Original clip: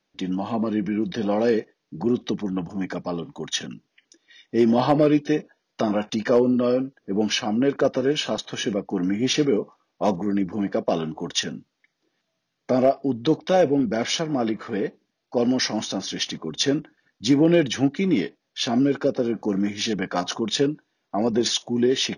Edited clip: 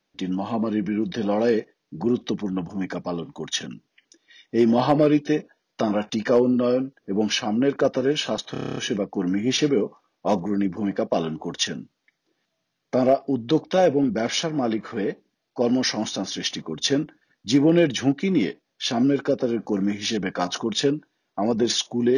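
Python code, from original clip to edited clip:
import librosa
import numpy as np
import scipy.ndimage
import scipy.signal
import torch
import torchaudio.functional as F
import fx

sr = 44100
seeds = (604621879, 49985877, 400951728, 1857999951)

y = fx.edit(x, sr, fx.stutter(start_s=8.52, slice_s=0.03, count=9), tone=tone)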